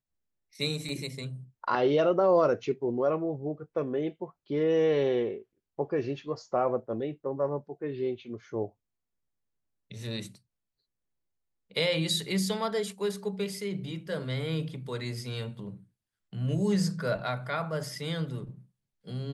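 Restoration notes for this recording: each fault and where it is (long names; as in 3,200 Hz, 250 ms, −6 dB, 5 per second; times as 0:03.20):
0:00.89: drop-out 2.2 ms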